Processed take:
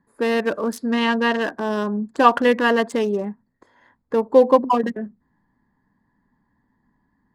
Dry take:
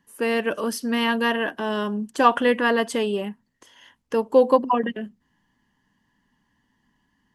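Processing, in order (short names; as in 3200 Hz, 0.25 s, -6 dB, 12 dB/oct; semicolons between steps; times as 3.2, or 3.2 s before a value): Wiener smoothing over 15 samples; 0.86–1.41 Bessel low-pass 7500 Hz, order 8; gain +3 dB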